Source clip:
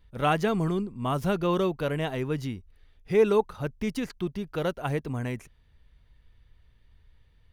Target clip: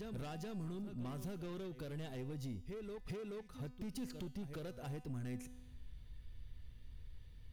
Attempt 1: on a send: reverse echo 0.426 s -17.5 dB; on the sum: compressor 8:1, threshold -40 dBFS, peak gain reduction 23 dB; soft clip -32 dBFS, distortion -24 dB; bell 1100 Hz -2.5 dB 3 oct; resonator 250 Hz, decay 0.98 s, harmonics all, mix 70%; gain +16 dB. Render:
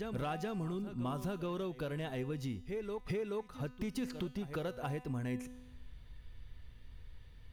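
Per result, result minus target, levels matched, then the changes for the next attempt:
soft clip: distortion -14 dB; 1000 Hz band +4.5 dB
change: soft clip -43 dBFS, distortion -10 dB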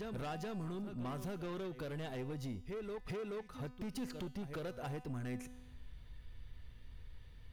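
1000 Hz band +4.5 dB
change: bell 1100 Hz -10 dB 3 oct

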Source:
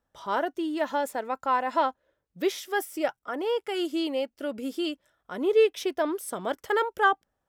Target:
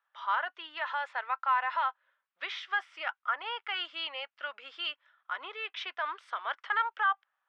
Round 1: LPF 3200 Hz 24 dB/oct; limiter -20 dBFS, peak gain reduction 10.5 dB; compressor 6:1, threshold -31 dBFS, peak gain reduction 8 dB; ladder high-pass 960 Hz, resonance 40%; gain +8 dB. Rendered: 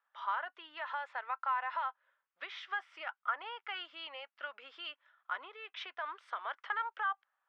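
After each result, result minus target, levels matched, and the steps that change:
compressor: peak gain reduction +8 dB; 4000 Hz band -2.5 dB
remove: compressor 6:1, threshold -31 dBFS, peak gain reduction 8 dB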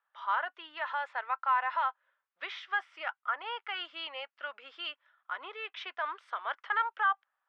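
4000 Hz band -3.0 dB
add after LPF: high shelf 2500 Hz +6.5 dB

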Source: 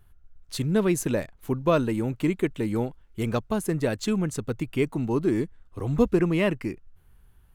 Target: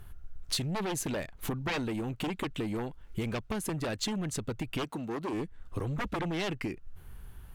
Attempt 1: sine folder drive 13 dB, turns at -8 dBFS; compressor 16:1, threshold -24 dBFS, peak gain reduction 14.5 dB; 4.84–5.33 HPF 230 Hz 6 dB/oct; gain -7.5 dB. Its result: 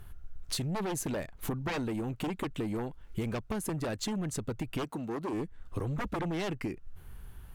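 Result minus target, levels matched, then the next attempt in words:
4000 Hz band -3.5 dB
sine folder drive 13 dB, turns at -8 dBFS; compressor 16:1, threshold -24 dBFS, peak gain reduction 14.5 dB; dynamic EQ 3200 Hz, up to +5 dB, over -44 dBFS, Q 0.73; 4.84–5.33 HPF 230 Hz 6 dB/oct; gain -7.5 dB

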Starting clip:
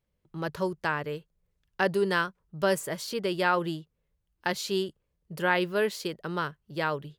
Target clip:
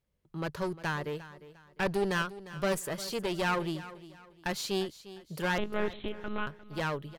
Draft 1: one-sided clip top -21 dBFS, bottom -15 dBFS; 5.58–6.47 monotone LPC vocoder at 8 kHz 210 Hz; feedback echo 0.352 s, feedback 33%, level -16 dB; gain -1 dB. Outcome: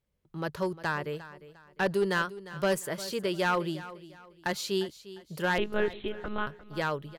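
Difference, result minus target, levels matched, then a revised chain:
one-sided clip: distortion -7 dB
one-sided clip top -32.5 dBFS, bottom -15 dBFS; 5.58–6.47 monotone LPC vocoder at 8 kHz 210 Hz; feedback echo 0.352 s, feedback 33%, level -16 dB; gain -1 dB

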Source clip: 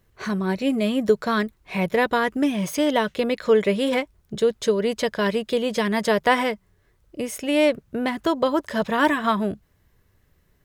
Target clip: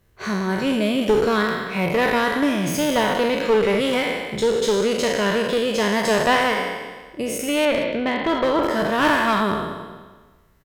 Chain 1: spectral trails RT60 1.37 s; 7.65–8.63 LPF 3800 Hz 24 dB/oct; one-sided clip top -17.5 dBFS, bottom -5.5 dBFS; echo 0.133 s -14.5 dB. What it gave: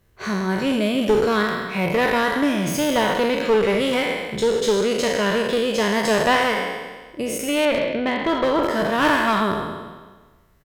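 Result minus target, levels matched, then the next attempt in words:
echo 48 ms early
spectral trails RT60 1.37 s; 7.65–8.63 LPF 3800 Hz 24 dB/oct; one-sided clip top -17.5 dBFS, bottom -5.5 dBFS; echo 0.181 s -14.5 dB

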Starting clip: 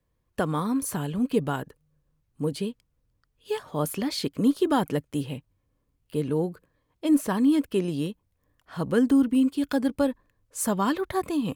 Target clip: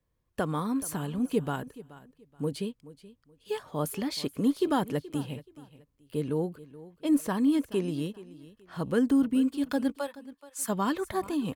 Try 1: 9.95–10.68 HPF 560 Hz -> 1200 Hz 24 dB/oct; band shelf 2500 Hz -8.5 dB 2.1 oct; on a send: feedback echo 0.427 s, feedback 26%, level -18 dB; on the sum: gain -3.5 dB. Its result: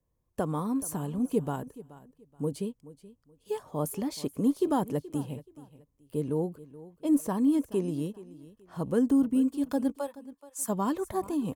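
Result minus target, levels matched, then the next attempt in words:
2000 Hz band -8.0 dB
9.95–10.68 HPF 560 Hz -> 1200 Hz 24 dB/oct; on a send: feedback echo 0.427 s, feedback 26%, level -18 dB; on the sum: gain -3.5 dB

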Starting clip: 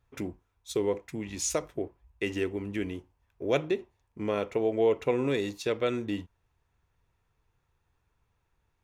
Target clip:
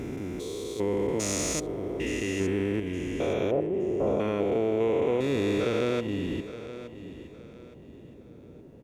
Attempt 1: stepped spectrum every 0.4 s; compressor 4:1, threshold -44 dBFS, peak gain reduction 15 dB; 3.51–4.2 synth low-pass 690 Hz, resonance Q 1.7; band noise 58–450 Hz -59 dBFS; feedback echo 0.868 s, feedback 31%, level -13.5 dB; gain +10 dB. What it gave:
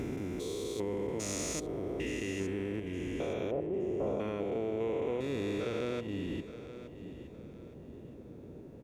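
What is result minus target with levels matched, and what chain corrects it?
compressor: peak gain reduction +8 dB
stepped spectrum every 0.4 s; compressor 4:1, threshold -33 dBFS, peak gain reduction 6.5 dB; 3.51–4.2 synth low-pass 690 Hz, resonance Q 1.7; band noise 58–450 Hz -59 dBFS; feedback echo 0.868 s, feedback 31%, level -13.5 dB; gain +10 dB

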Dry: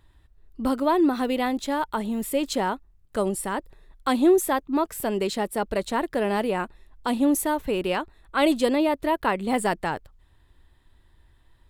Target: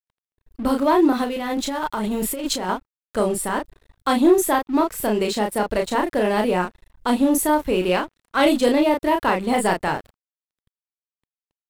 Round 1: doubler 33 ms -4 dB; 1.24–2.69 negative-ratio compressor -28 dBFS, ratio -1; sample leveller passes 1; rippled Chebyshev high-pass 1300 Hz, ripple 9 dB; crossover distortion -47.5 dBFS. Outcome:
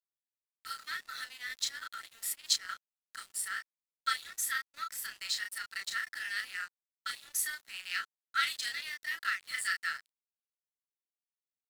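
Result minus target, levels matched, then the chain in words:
1000 Hz band -4.5 dB
doubler 33 ms -4 dB; 1.24–2.69 negative-ratio compressor -28 dBFS, ratio -1; sample leveller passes 1; crossover distortion -47.5 dBFS

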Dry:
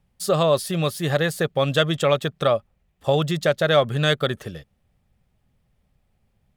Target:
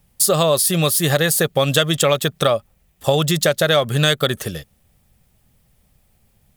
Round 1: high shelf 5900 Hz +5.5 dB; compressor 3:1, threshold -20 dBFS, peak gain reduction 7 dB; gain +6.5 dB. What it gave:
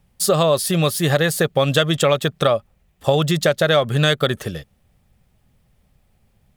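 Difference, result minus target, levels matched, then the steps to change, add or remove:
8000 Hz band -5.5 dB
change: high shelf 5900 Hz +17 dB

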